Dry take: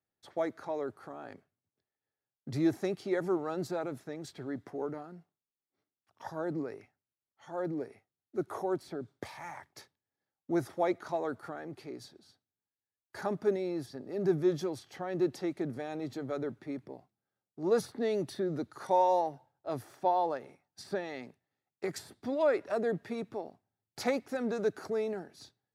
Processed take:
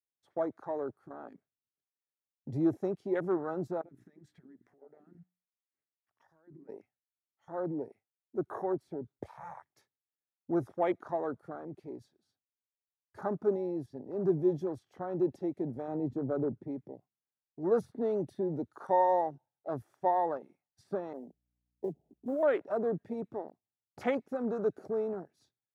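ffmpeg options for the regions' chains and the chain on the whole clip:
ffmpeg -i in.wav -filter_complex "[0:a]asettb=1/sr,asplit=3[link_01][link_02][link_03];[link_01]atrim=end=3.814[link_04];[link_02]atrim=start=3.81:end=6.69,asetpts=PTS-STARTPTS,afade=type=in:duration=0.004:curve=qsin,afade=type=out:start_time=2.876:duration=0.004:curve=qsin,equalizer=frequency=1800:width=2.5:gain=9,bandreject=frequency=60:width_type=h:width=6,bandreject=frequency=120:width_type=h:width=6,bandreject=frequency=180:width_type=h:width=6,bandreject=frequency=240:width_type=h:width=6,bandreject=frequency=300:width_type=h:width=6,acompressor=threshold=-48dB:ratio=12:attack=3.2:release=140:knee=1:detection=peak[link_05];[link_03]atrim=start=6.686[link_06];[link_04][link_05]acrossfade=duration=0.004:curve1=hsin:curve2=qsin[link_07];[link_07][link_06]acrossfade=duration=0.004:curve1=qsin:curve2=hsin,asettb=1/sr,asplit=3[link_08][link_09][link_10];[link_08]atrim=end=15.884[link_11];[link_09]atrim=start=15.88:end=16.68,asetpts=PTS-STARTPTS,afade=type=in:duration=0.004:curve=qsin,afade=type=out:start_time=0.796:duration=0.004:curve=qsin,highpass=47,tiltshelf=frequency=910:gain=6[link_12];[link_10]atrim=start=16.676[link_13];[link_11][link_12]acrossfade=duration=0.004:curve1=hsin:curve2=qsin[link_14];[link_14][link_13]acrossfade=duration=0.004:curve1=qsin:curve2=hsin,asettb=1/sr,asplit=3[link_15][link_16][link_17];[link_15]atrim=end=21.134[link_18];[link_16]atrim=start=21.13:end=22.43,asetpts=PTS-STARTPTS,afade=type=in:duration=0.004:curve=qsin,afade=type=out:start_time=1.296:duration=0.004:curve=qsin,asuperpass=centerf=330:order=20:qfactor=0.5,aeval=exprs='val(0)+0.000447*(sin(2*PI*60*n/s)+sin(2*PI*2*60*n/s)/2+sin(2*PI*3*60*n/s)/3+sin(2*PI*4*60*n/s)/4+sin(2*PI*5*60*n/s)/5)':channel_layout=same,acrusher=bits=6:mode=log:mix=0:aa=0.000001[link_19];[link_17]atrim=start=22.426[link_20];[link_18][link_19]acrossfade=duration=0.004:curve1=hsin:curve2=qsin[link_21];[link_21][link_20]acrossfade=duration=0.004:curve1=qsin:curve2=hsin,afwtdn=0.00891,equalizer=frequency=4500:width_type=o:width=0.33:gain=-4.5" out.wav

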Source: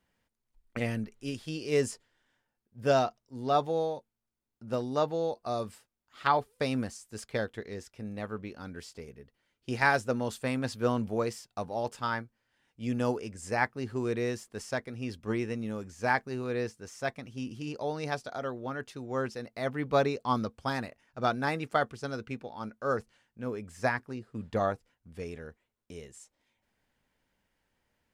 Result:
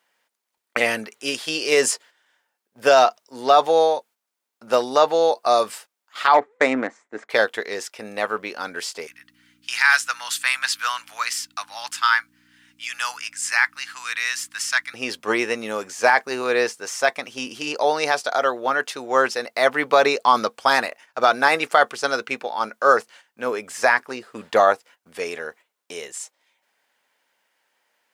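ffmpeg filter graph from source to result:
ffmpeg -i in.wav -filter_complex "[0:a]asettb=1/sr,asplit=3[link_01][link_02][link_03];[link_01]atrim=end=6.344[link_04];[link_02]atrim=start=6.34:end=7.3,asetpts=PTS-STARTPTS,afade=type=in:duration=0.004:curve=qsin,afade=type=out:start_time=0.956:duration=0.004:curve=qsin,adynamicsmooth=sensitivity=3:basefreq=1200,highpass=130,equalizer=frequency=290:width_type=q:width=4:gain=9,equalizer=frequency=2000:width_type=q:width=4:gain=9,equalizer=frequency=2900:width_type=q:width=4:gain=-7,equalizer=frequency=4800:width_type=q:width=4:gain=-9,equalizer=frequency=7300:width_type=q:width=4:gain=5,lowpass=frequency=8700:width=0.5412,lowpass=frequency=8700:width=1.3066[link_05];[link_03]atrim=start=7.296[link_06];[link_04][link_05]acrossfade=duration=0.004:curve1=hsin:curve2=qsin[link_07];[link_07][link_06]acrossfade=duration=0.004:curve1=qsin:curve2=hsin,asettb=1/sr,asplit=3[link_08][link_09][link_10];[link_08]atrim=end=9.074[link_11];[link_09]atrim=start=9.07:end=14.94,asetpts=PTS-STARTPTS,afade=type=in:duration=0.004:curve=qsin,afade=type=out:start_time=5.866:duration=0.004:curve=qsin,highpass=frequency=1300:width=0.5412,highpass=frequency=1300:width=1.3066,aeval=exprs='val(0)+0.00178*(sin(2*PI*60*n/s)+sin(2*PI*2*60*n/s)/2+sin(2*PI*3*60*n/s)/3+sin(2*PI*4*60*n/s)/4+sin(2*PI*5*60*n/s)/5)':channel_layout=same[link_12];[link_10]atrim=start=14.936[link_13];[link_11][link_12]acrossfade=duration=0.004:curve1=hsin:curve2=qsin[link_14];[link_14][link_13]acrossfade=duration=0.004:curve1=qsin:curve2=hsin,agate=range=-8dB:threshold=-58dB:ratio=16:detection=peak,highpass=630,alimiter=level_in=21.5dB:limit=-1dB:release=50:level=0:latency=1,volume=-3dB" out.wav

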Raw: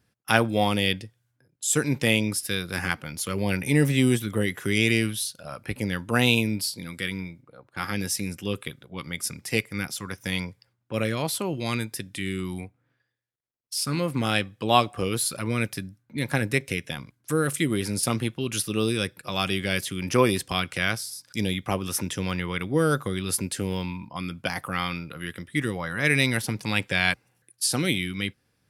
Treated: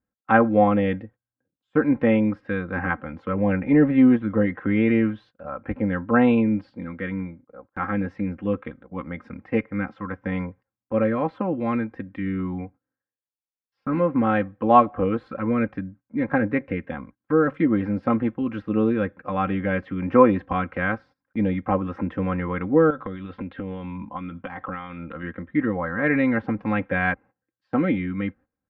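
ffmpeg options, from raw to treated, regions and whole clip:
ffmpeg -i in.wav -filter_complex "[0:a]asettb=1/sr,asplit=3[link_01][link_02][link_03];[link_01]atrim=end=22.904[link_04];[link_02]atrim=start=22.9:end=25.23,asetpts=PTS-STARTPTS,afade=type=in:duration=0.004:curve=qsin,afade=type=out:start_time=2.326:duration=0.004:curve=qsin,lowpass=frequency=3500:width_type=q:width=4.3,acompressor=threshold=-30dB:ratio=6:attack=3.2:release=140:knee=1:detection=peak[link_05];[link_03]atrim=start=25.226[link_06];[link_04][link_05]acrossfade=duration=0.004:curve1=hsin:curve2=qsin[link_07];[link_07][link_06]acrossfade=duration=0.004:curve1=qsin:curve2=hsin,lowpass=frequency=1600:width=0.5412,lowpass=frequency=1600:width=1.3066,aecho=1:1:3.8:0.71,agate=range=-18dB:threshold=-49dB:ratio=16:detection=peak,volume=3.5dB" out.wav

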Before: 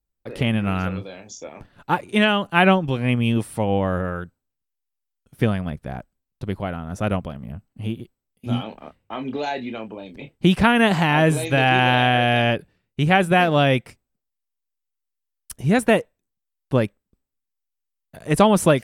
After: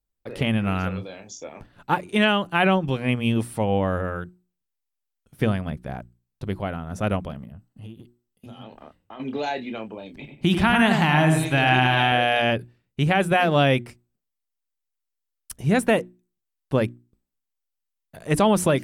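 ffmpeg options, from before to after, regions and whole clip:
ffmpeg -i in.wav -filter_complex "[0:a]asettb=1/sr,asplit=3[link_01][link_02][link_03];[link_01]atrim=end=7.454[link_04];[link_02]atrim=start=7.45:end=9.2,asetpts=PTS-STARTPTS,afade=type=in:duration=0.004:curve=qsin,afade=type=out:start_time=1.746:duration=0.004:curve=qsin,acompressor=threshold=-38dB:ratio=3:attack=3.2:release=140:knee=1:detection=peak,bandreject=frequency=2300:width=7.9[link_05];[link_03]atrim=start=9.196[link_06];[link_04][link_05]acrossfade=duration=0.004:curve1=hsin:curve2=qsin[link_07];[link_07][link_06]acrossfade=duration=0.004:curve1=qsin:curve2=hsin,asettb=1/sr,asplit=3[link_08][link_09][link_10];[link_08]atrim=end=10.124[link_11];[link_09]atrim=start=10.12:end=12.12,asetpts=PTS-STARTPTS,afade=type=in:duration=0.004:curve=qsin,afade=type=out:start_time=1.996:duration=0.004:curve=qsin,equalizer=frequency=490:width=4.2:gain=-12.5,asplit=2[link_12][link_13];[link_13]adelay=94,lowpass=frequency=2400:poles=1,volume=-5.5dB,asplit=2[link_14][link_15];[link_15]adelay=94,lowpass=frequency=2400:poles=1,volume=0.32,asplit=2[link_16][link_17];[link_17]adelay=94,lowpass=frequency=2400:poles=1,volume=0.32,asplit=2[link_18][link_19];[link_19]adelay=94,lowpass=frequency=2400:poles=1,volume=0.32[link_20];[link_12][link_14][link_16][link_18][link_20]amix=inputs=5:normalize=0,atrim=end_sample=88200[link_21];[link_10]atrim=start=12.116[link_22];[link_11][link_21]acrossfade=duration=0.004:curve1=hsin:curve2=qsin[link_23];[link_23][link_22]acrossfade=duration=0.004:curve1=qsin:curve2=hsin,bandreject=frequency=60:width_type=h:width=6,bandreject=frequency=120:width_type=h:width=6,bandreject=frequency=180:width_type=h:width=6,bandreject=frequency=240:width_type=h:width=6,bandreject=frequency=300:width_type=h:width=6,bandreject=frequency=360:width_type=h:width=6,alimiter=level_in=6dB:limit=-1dB:release=50:level=0:latency=1,volume=-7dB" out.wav

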